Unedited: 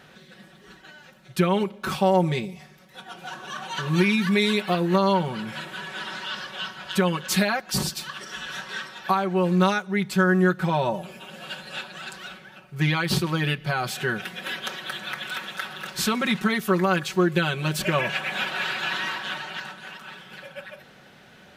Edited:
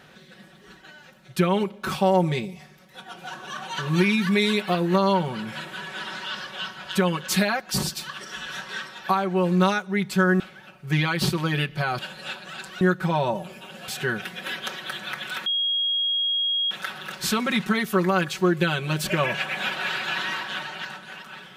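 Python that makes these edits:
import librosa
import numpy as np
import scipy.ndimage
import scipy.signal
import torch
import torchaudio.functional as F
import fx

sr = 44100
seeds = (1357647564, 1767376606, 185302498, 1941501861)

y = fx.edit(x, sr, fx.swap(start_s=10.4, length_s=1.07, other_s=12.29, other_length_s=1.59),
    fx.insert_tone(at_s=15.46, length_s=1.25, hz=3280.0, db=-21.0), tone=tone)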